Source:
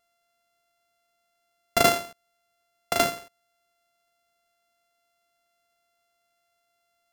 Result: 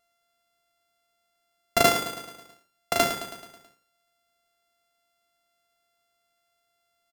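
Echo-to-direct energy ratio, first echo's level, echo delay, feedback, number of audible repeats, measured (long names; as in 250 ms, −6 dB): −8.5 dB, −10.0 dB, 108 ms, 55%, 5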